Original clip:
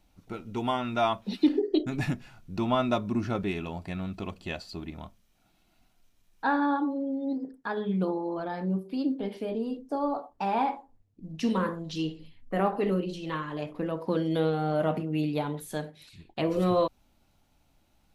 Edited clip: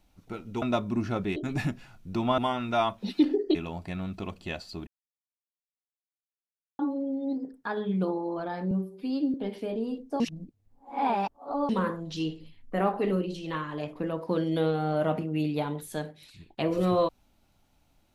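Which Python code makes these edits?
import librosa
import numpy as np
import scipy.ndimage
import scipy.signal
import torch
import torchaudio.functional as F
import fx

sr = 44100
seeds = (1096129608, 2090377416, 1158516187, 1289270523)

y = fx.edit(x, sr, fx.swap(start_s=0.62, length_s=1.17, other_s=2.81, other_length_s=0.74),
    fx.silence(start_s=4.87, length_s=1.92),
    fx.stretch_span(start_s=8.71, length_s=0.42, factor=1.5),
    fx.reverse_span(start_s=9.99, length_s=1.49), tone=tone)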